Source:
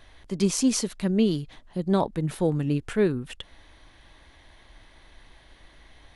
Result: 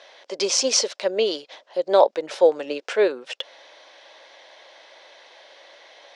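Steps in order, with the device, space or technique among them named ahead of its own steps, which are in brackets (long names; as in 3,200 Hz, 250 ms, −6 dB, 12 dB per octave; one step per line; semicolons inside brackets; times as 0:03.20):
phone speaker on a table (loudspeaker in its box 470–6,500 Hz, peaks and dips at 550 Hz +9 dB, 1,200 Hz −4 dB, 1,800 Hz −3 dB, 5,300 Hz +5 dB)
level +8.5 dB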